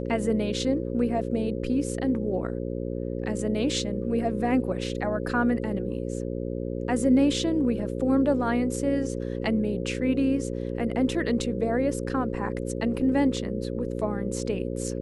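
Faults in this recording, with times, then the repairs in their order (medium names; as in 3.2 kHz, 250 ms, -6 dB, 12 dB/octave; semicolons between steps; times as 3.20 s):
buzz 60 Hz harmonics 9 -31 dBFS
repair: de-hum 60 Hz, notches 9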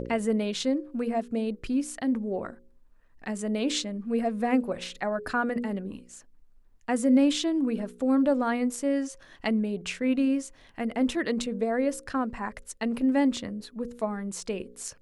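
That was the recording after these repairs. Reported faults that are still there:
nothing left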